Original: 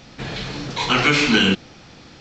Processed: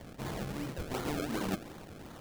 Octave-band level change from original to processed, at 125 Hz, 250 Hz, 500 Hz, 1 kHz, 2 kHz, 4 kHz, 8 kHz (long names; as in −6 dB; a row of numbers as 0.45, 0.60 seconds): −13.0, −15.0, −13.0, −16.5, −24.5, −26.0, −14.5 decibels